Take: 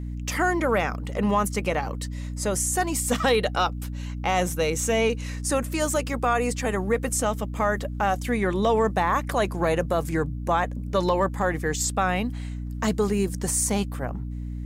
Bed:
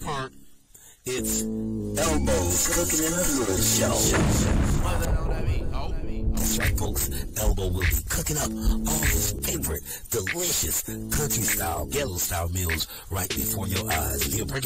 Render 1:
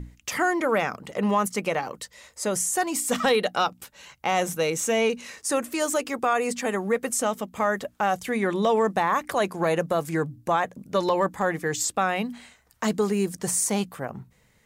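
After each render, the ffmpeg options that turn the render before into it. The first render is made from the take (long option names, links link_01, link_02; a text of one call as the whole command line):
ffmpeg -i in.wav -af "bandreject=frequency=60:width_type=h:width=6,bandreject=frequency=120:width_type=h:width=6,bandreject=frequency=180:width_type=h:width=6,bandreject=frequency=240:width_type=h:width=6,bandreject=frequency=300:width_type=h:width=6" out.wav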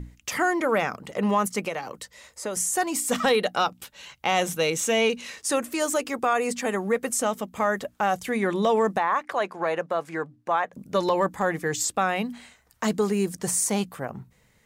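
ffmpeg -i in.wav -filter_complex "[0:a]asettb=1/sr,asplit=3[link_01][link_02][link_03];[link_01]atrim=end=1.654[link_04];[link_02]atrim=start=1.65:end=2.57,asetpts=PTS-STARTPTS,afade=type=in:duration=0.004:curve=qsin,afade=type=out:start_time=0.916:duration=0.004:curve=qsin,acrossover=split=300|2600[link_05][link_06][link_07];[link_05]acompressor=threshold=-43dB:ratio=4[link_08];[link_06]acompressor=threshold=-29dB:ratio=4[link_09];[link_07]acompressor=threshold=-37dB:ratio=4[link_10];[link_08][link_09][link_10]amix=inputs=3:normalize=0[link_11];[link_03]atrim=start=2.566[link_12];[link_04][link_11]acrossfade=duration=0.004:curve1=hsin:curve2=qsin[link_13];[link_13][link_12]acrossfade=duration=0.004:curve1=qsin:curve2=hsin,asettb=1/sr,asplit=3[link_14][link_15][link_16];[link_14]atrim=end=3.744[link_17];[link_15]atrim=start=3.74:end=5.56,asetpts=PTS-STARTPTS,afade=type=in:duration=0.004:curve=qsin,afade=type=out:start_time=1.816:duration=0.004:curve=qsin,equalizer=frequency=3300:width=1.5:gain=5.5[link_18];[link_16]atrim=start=5.556[link_19];[link_17][link_18]acrossfade=duration=0.004:curve1=hsin:curve2=qsin[link_20];[link_20][link_19]acrossfade=duration=0.004:curve1=qsin:curve2=hsin,asplit=3[link_21][link_22][link_23];[link_21]afade=type=out:start_time=8.97:duration=0.02[link_24];[link_22]bandpass=frequency=1200:width_type=q:width=0.53,afade=type=in:start_time=8.97:duration=0.02,afade=type=out:start_time=10.72:duration=0.02[link_25];[link_23]afade=type=in:start_time=10.72:duration=0.02[link_26];[link_24][link_25][link_26]amix=inputs=3:normalize=0" out.wav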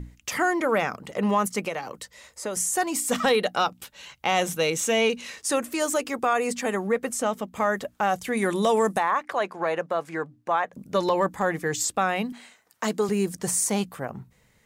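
ffmpeg -i in.wav -filter_complex "[0:a]asettb=1/sr,asplit=3[link_01][link_02][link_03];[link_01]atrim=end=6.874[link_04];[link_02]atrim=start=6.87:end=7.54,asetpts=PTS-STARTPTS,afade=type=in:duration=0.004:curve=qsin,afade=type=out:start_time=0.666:duration=0.004:curve=qsin,highshelf=frequency=4700:gain=-5.5[link_05];[link_03]atrim=start=7.536[link_06];[link_04][link_05]acrossfade=duration=0.004:curve1=hsin:curve2=qsin[link_07];[link_07][link_06]acrossfade=duration=0.004:curve1=qsin:curve2=hsin,asettb=1/sr,asplit=3[link_08][link_09][link_10];[link_08]atrim=end=8.374[link_11];[link_09]atrim=start=8.37:end=9.11,asetpts=PTS-STARTPTS,afade=type=in:duration=0.004:curve=qsin,afade=type=out:start_time=0.736:duration=0.004:curve=qsin,equalizer=frequency=10000:width_type=o:width=1.1:gain=15[link_12];[link_10]atrim=start=9.106[link_13];[link_11][link_12]acrossfade=duration=0.004:curve1=hsin:curve2=qsin[link_14];[link_14][link_13]acrossfade=duration=0.004:curve1=qsin:curve2=hsin,asettb=1/sr,asplit=3[link_15][link_16][link_17];[link_15]atrim=end=12.324[link_18];[link_16]atrim=start=12.32:end=13.09,asetpts=PTS-STARTPTS,afade=type=in:duration=0.004:curve=qsin,afade=type=out:start_time=0.766:duration=0.004:curve=qsin,highpass=230[link_19];[link_17]atrim=start=13.086[link_20];[link_18][link_19]acrossfade=duration=0.004:curve1=hsin:curve2=qsin[link_21];[link_21][link_20]acrossfade=duration=0.004:curve1=qsin:curve2=hsin" out.wav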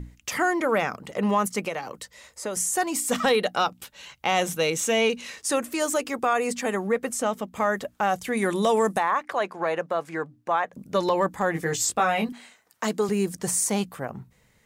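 ffmpeg -i in.wav -filter_complex "[0:a]asettb=1/sr,asplit=3[link_01][link_02][link_03];[link_01]atrim=end=11.534[link_04];[link_02]atrim=start=11.53:end=12.29,asetpts=PTS-STARTPTS,afade=type=in:duration=0.004:curve=qsin,afade=type=out:start_time=0.756:duration=0.004:curve=qsin,asplit=2[link_05][link_06];[link_06]adelay=18,volume=-3dB[link_07];[link_05][link_07]amix=inputs=2:normalize=0,atrim=end_sample=33516[link_08];[link_03]atrim=start=12.286[link_09];[link_04][link_08]acrossfade=duration=0.004:curve1=hsin:curve2=qsin[link_10];[link_10][link_09]acrossfade=duration=0.004:curve1=qsin:curve2=hsin" out.wav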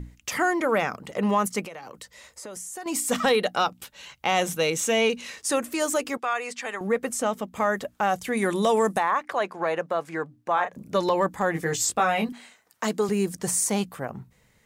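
ffmpeg -i in.wav -filter_complex "[0:a]asettb=1/sr,asplit=3[link_01][link_02][link_03];[link_01]atrim=end=1.664[link_04];[link_02]atrim=start=1.66:end=2.86,asetpts=PTS-STARTPTS,afade=type=in:duration=0.004:curve=qsin,afade=type=out:start_time=1.196:duration=0.004:curve=qsin,acompressor=threshold=-38dB:ratio=3:attack=3.2:release=140:knee=1:detection=peak[link_05];[link_03]atrim=start=2.856[link_06];[link_04][link_05]acrossfade=duration=0.004:curve1=hsin:curve2=qsin[link_07];[link_07][link_06]acrossfade=duration=0.004:curve1=qsin:curve2=hsin,asettb=1/sr,asplit=3[link_08][link_09][link_10];[link_08]atrim=end=6.174[link_11];[link_09]atrim=start=6.17:end=6.81,asetpts=PTS-STARTPTS,afade=type=in:duration=0.004:curve=qsin,afade=type=out:start_time=0.636:duration=0.004:curve=qsin,bandpass=frequency=2400:width_type=q:width=0.55[link_12];[link_10]atrim=start=6.806[link_13];[link_11][link_12]acrossfade=duration=0.004:curve1=hsin:curve2=qsin[link_14];[link_14][link_13]acrossfade=duration=0.004:curve1=qsin:curve2=hsin,asettb=1/sr,asplit=3[link_15][link_16][link_17];[link_15]atrim=end=10.534[link_18];[link_16]atrim=start=10.53:end=10.94,asetpts=PTS-STARTPTS,afade=type=in:duration=0.004:curve=qsin,afade=type=out:start_time=0.406:duration=0.004:curve=qsin,asplit=2[link_19][link_20];[link_20]adelay=34,volume=-6.5dB[link_21];[link_19][link_21]amix=inputs=2:normalize=0,atrim=end_sample=18081[link_22];[link_17]atrim=start=10.936[link_23];[link_18][link_22]acrossfade=duration=0.004:curve1=hsin:curve2=qsin[link_24];[link_24][link_23]acrossfade=duration=0.004:curve1=qsin:curve2=hsin" out.wav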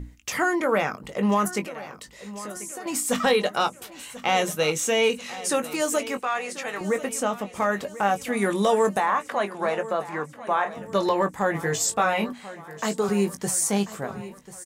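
ffmpeg -i in.wav -filter_complex "[0:a]asplit=2[link_01][link_02];[link_02]adelay=20,volume=-9dB[link_03];[link_01][link_03]amix=inputs=2:normalize=0,aecho=1:1:1040|2080|3120|4160:0.158|0.0792|0.0396|0.0198" out.wav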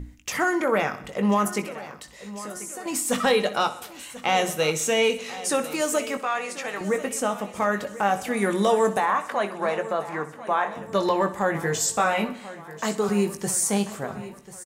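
ffmpeg -i in.wav -af "aecho=1:1:63|126|189|252|315:0.178|0.0996|0.0558|0.0312|0.0175" out.wav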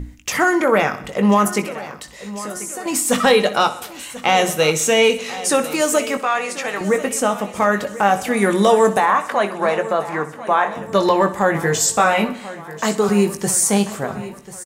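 ffmpeg -i in.wav -af "volume=7dB,alimiter=limit=-2dB:level=0:latency=1" out.wav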